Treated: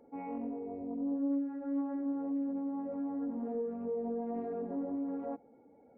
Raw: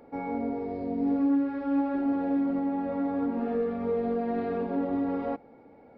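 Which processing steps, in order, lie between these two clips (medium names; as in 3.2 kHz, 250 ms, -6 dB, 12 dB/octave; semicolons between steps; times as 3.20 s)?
spectral contrast enhancement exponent 1.5; loudspeaker Doppler distortion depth 0.23 ms; trim -7.5 dB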